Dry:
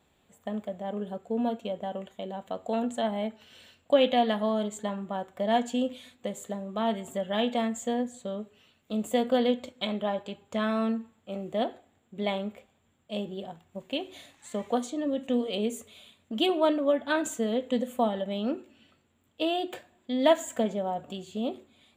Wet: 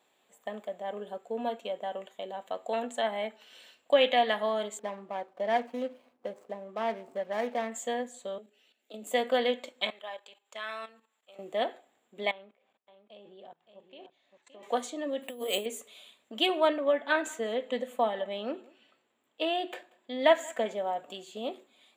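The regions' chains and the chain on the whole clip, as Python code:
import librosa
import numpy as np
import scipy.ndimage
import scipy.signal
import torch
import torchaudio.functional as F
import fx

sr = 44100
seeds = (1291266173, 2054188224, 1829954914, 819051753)

y = fx.chain(x, sr, fx.median_filter(points=25),
    fx.high_shelf(hz=2700.0, db=-9.5), at=(4.79, 7.72))
y = fx.chain(y, sr, fx.cheby1_highpass(hz=210.0, order=8),
    fx.peak_eq(hz=1100.0, db=-14.5, octaves=0.46),
    fx.level_steps(step_db=11), at=(8.38, 9.07))
y = fx.chain(y, sr, fx.highpass(hz=1500.0, slope=6),
    fx.level_steps(step_db=13), at=(9.9, 11.39))
y = fx.chain(y, sr, fx.level_steps(step_db=23),
    fx.air_absorb(metres=140.0),
    fx.echo_single(ms=569, db=-9.0), at=(12.31, 14.63))
y = fx.chain(y, sr, fx.over_compress(threshold_db=-30.0, ratio=-0.5),
    fx.resample_bad(factor=4, down='filtered', up='hold'), at=(15.22, 15.66))
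y = fx.chain(y, sr, fx.high_shelf(hz=4700.0, db=-7.5),
    fx.echo_single(ms=185, db=-23.5), at=(16.68, 20.66))
y = scipy.signal.sosfilt(scipy.signal.butter(2, 420.0, 'highpass', fs=sr, output='sos'), y)
y = fx.notch(y, sr, hz=1400.0, q=21.0)
y = fx.dynamic_eq(y, sr, hz=2000.0, q=1.8, threshold_db=-50.0, ratio=4.0, max_db=7)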